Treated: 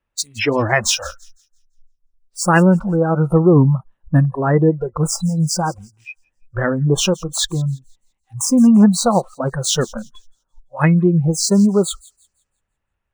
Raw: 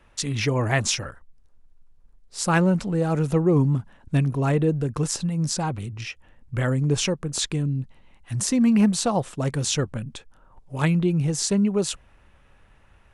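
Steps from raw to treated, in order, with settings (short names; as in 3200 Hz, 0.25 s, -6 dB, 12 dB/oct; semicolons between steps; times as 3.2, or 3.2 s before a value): median filter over 3 samples; spectral noise reduction 29 dB; on a send: thin delay 0.169 s, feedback 31%, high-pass 5200 Hz, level -18 dB; on the sum: gain +8 dB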